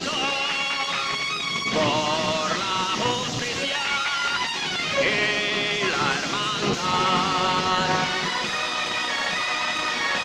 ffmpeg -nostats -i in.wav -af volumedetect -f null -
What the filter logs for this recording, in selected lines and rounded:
mean_volume: -24.3 dB
max_volume: -9.4 dB